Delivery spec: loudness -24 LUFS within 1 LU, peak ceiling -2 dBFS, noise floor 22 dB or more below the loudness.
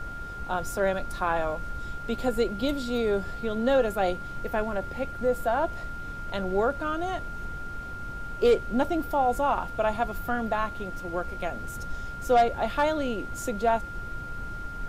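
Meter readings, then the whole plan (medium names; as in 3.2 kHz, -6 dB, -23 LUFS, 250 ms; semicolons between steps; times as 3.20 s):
steady tone 1.4 kHz; tone level -37 dBFS; noise floor -37 dBFS; noise floor target -51 dBFS; loudness -28.5 LUFS; peak level -12.5 dBFS; loudness target -24.0 LUFS
-> band-stop 1.4 kHz, Q 30; noise print and reduce 14 dB; trim +4.5 dB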